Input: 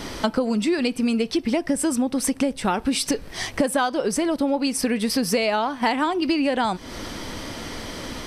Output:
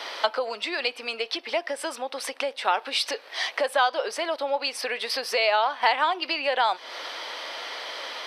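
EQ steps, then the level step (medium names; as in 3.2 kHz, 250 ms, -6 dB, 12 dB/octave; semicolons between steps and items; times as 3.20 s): high-pass 550 Hz 24 dB/octave; resonant high shelf 5.5 kHz -10.5 dB, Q 1.5; +1.0 dB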